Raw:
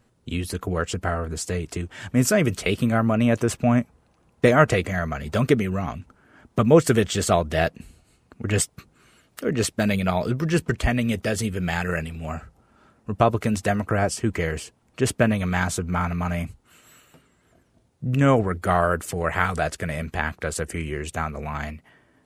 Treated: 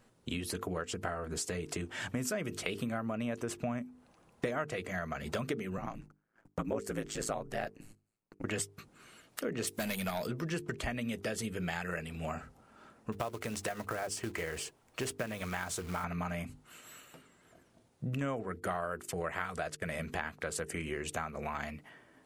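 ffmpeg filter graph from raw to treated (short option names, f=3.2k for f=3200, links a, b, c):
-filter_complex "[0:a]asettb=1/sr,asplit=3[a][b][c];[a]atrim=end=5.774[d];[b]atrim=start=5.77:end=8.44,asetpts=PTS-STARTPTS,afade=t=in:d=0.004:c=qsin,afade=t=out:st=2.666:d=0.004:c=qsin,agate=range=-23dB:threshold=-50dB:ratio=16:release=100:detection=peak,equalizer=f=3.4k:w=2.2:g=-7.5,aeval=exprs='val(0)*sin(2*PI*55*n/s)':c=same[e];[c]atrim=start=8.436[f];[d][e]acrossfade=d=0.004:c1=hsin:c2=qsin[g];[g][f]acrossfade=d=0.004:c1=qsin:c2=hsin,asettb=1/sr,asplit=3[h][i][j];[h]atrim=end=9.674[k];[i]atrim=start=9.67:end=10.27,asetpts=PTS-STARTPTS,afade=t=in:d=0.004:c=qsin,afade=t=out:st=0.596:d=0.004:c=qsin,aemphasis=mode=production:type=75kf,volume=18dB,asoftclip=hard,volume=-18dB,acompressor=mode=upward:threshold=-29dB:ratio=2.5:attack=3.2:release=140:knee=2.83:detection=peak[l];[j]atrim=start=10.266[m];[k][l]acrossfade=d=0.004:c1=hsin:c2=qsin[n];[n][m]acrossfade=d=0.004:c1=qsin:c2=hsin,asettb=1/sr,asplit=3[o][p][q];[o]atrim=end=13.124[r];[p]atrim=start=13.12:end=16.04,asetpts=PTS-STARTPTS,afade=t=in:d=0.004:c=qsin,afade=t=out:st=2.916:d=0.004:c=qsin,equalizer=f=200:t=o:w=0.98:g=-6,acompressor=threshold=-28dB:ratio=1.5:attack=3.2:release=140:knee=1:detection=peak,acrusher=bits=4:mode=log:mix=0:aa=0.000001[s];[q]atrim=start=16.036[t];[r][s]acrossfade=d=0.004:c1=hsin:c2=qsin[u];[u][t]acrossfade=d=0.004:c1=qsin:c2=hsin,asettb=1/sr,asplit=3[v][w][x];[v]atrim=end=18.214[y];[w]atrim=start=18.21:end=19.92,asetpts=PTS-STARTPTS,afade=t=in:d=0.004:c=qsin,afade=t=out:st=1.706:d=0.004:c=qsin,bandreject=f=850:w=18,agate=range=-18dB:threshold=-36dB:ratio=16:release=100:detection=peak[z];[x]atrim=start=19.916[aa];[y][z]acrossfade=d=0.004:c1=hsin:c2=qsin[ab];[ab][aa]acrossfade=d=0.004:c1=qsin:c2=hsin,equalizer=f=62:w=0.62:g=-9.5,bandreject=f=50:t=h:w=6,bandreject=f=100:t=h:w=6,bandreject=f=150:t=h:w=6,bandreject=f=200:t=h:w=6,bandreject=f=250:t=h:w=6,bandreject=f=300:t=h:w=6,bandreject=f=350:t=h:w=6,bandreject=f=400:t=h:w=6,bandreject=f=450:t=h:w=6,acompressor=threshold=-34dB:ratio=5"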